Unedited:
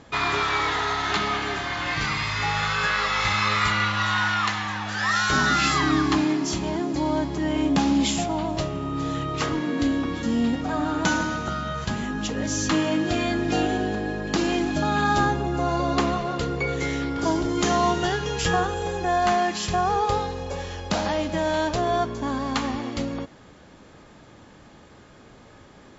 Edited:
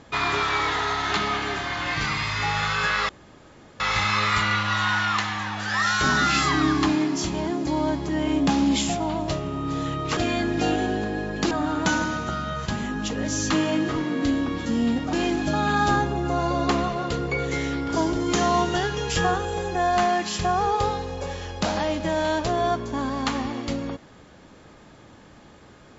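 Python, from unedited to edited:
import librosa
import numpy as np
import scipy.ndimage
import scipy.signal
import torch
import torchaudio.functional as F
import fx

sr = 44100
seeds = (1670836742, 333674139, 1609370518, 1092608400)

y = fx.edit(x, sr, fx.insert_room_tone(at_s=3.09, length_s=0.71),
    fx.swap(start_s=9.46, length_s=1.24, other_s=13.08, other_length_s=1.34), tone=tone)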